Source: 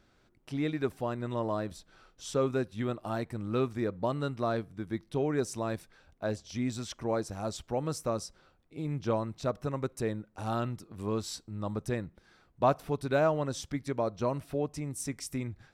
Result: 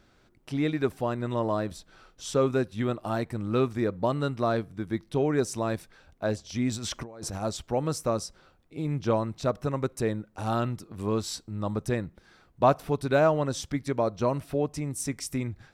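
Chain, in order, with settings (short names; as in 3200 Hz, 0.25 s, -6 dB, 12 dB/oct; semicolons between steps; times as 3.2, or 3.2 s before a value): 6.71–7.42 negative-ratio compressor -42 dBFS, ratio -1; gain +4.5 dB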